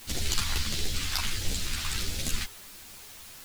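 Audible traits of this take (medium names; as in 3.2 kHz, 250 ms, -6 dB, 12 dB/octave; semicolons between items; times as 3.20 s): phasing stages 2, 1.5 Hz, lowest notch 480–1100 Hz; a quantiser's noise floor 8-bit, dither triangular; a shimmering, thickened sound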